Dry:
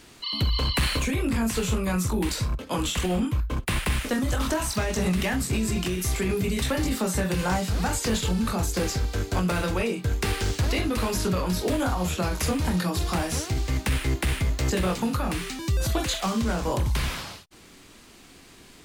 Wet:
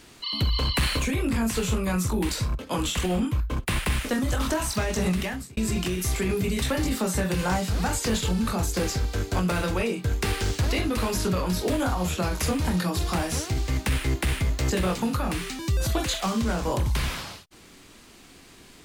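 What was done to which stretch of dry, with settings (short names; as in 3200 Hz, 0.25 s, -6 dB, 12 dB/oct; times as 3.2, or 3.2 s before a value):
5.1–5.57 fade out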